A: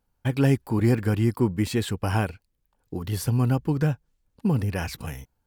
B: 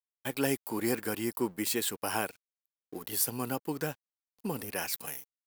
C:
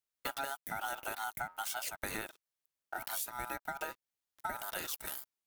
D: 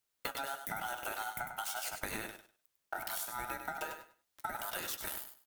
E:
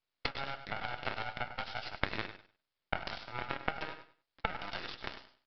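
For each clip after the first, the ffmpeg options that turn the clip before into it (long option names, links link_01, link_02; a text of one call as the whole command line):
ffmpeg -i in.wav -af "highpass=330,aeval=exprs='sgn(val(0))*max(abs(val(0))-0.00211,0)':channel_layout=same,aemphasis=mode=production:type=50fm,volume=-3.5dB" out.wav
ffmpeg -i in.wav -af "acompressor=threshold=-39dB:ratio=10,aeval=exprs='val(0)*sin(2*PI*1100*n/s)':channel_layout=same,volume=6.5dB" out.wav
ffmpeg -i in.wav -filter_complex "[0:a]acompressor=threshold=-43dB:ratio=6,flanger=delay=8.1:depth=9.7:regen=-67:speed=0.42:shape=sinusoidal,asplit=2[link_01][link_02];[link_02]aecho=0:1:99|198|297:0.398|0.0836|0.0176[link_03];[link_01][link_03]amix=inputs=2:normalize=0,volume=11.5dB" out.wav
ffmpeg -i in.wav -af "aeval=exprs='0.133*(cos(1*acos(clip(val(0)/0.133,-1,1)))-cos(1*PI/2))+0.0119*(cos(7*acos(clip(val(0)/0.133,-1,1)))-cos(7*PI/2))+0.00335*(cos(8*acos(clip(val(0)/0.133,-1,1)))-cos(8*PI/2))':channel_layout=same,aresample=11025,aeval=exprs='max(val(0),0)':channel_layout=same,aresample=44100,volume=12dB" out.wav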